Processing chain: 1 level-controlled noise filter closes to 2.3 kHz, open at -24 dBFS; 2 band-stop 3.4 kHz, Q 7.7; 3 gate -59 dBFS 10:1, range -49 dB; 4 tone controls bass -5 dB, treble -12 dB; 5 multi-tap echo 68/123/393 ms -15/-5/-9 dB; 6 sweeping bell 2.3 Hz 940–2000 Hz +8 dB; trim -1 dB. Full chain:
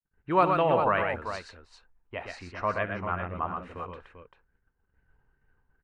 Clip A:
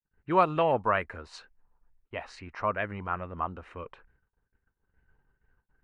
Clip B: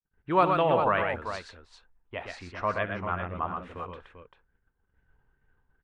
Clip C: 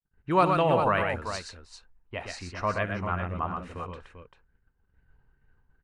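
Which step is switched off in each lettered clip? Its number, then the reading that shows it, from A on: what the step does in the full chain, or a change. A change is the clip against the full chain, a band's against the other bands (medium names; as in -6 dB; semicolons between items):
5, momentary loudness spread change +2 LU; 2, 4 kHz band +2.0 dB; 4, 125 Hz band +4.0 dB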